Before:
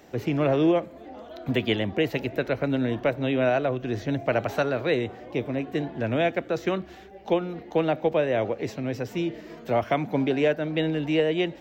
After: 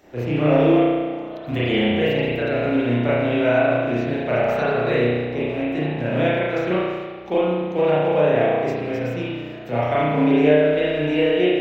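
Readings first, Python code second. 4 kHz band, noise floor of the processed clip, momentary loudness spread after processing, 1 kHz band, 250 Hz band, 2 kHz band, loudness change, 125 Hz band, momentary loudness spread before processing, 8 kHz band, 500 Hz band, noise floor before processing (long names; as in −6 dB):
+4.0 dB, −34 dBFS, 9 LU, +6.0 dB, +6.0 dB, +6.0 dB, +6.0 dB, +6.0 dB, 8 LU, can't be measured, +6.5 dB, −46 dBFS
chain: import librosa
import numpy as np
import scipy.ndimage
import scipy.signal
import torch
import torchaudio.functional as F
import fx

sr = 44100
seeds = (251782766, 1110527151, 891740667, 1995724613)

y = fx.rattle_buzz(x, sr, strikes_db=-31.0, level_db=-32.0)
y = fx.rev_spring(y, sr, rt60_s=1.5, pass_ms=(33,), chirp_ms=55, drr_db=-9.5)
y = F.gain(torch.from_numpy(y), -4.0).numpy()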